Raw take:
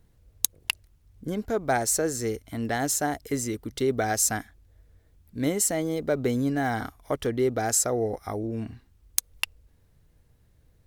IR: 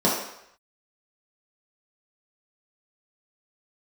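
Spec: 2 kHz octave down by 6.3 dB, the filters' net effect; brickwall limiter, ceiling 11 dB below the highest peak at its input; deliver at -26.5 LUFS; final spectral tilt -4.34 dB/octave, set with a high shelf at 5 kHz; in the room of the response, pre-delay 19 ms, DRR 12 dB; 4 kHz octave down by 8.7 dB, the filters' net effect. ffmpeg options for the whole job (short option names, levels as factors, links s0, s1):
-filter_complex "[0:a]equalizer=f=2000:t=o:g=-6,equalizer=f=4000:t=o:g=-8.5,highshelf=f=5000:g=-4,alimiter=limit=0.106:level=0:latency=1,asplit=2[s0][s1];[1:a]atrim=start_sample=2205,adelay=19[s2];[s1][s2]afir=irnorm=-1:irlink=0,volume=0.0355[s3];[s0][s3]amix=inputs=2:normalize=0,volume=1.41"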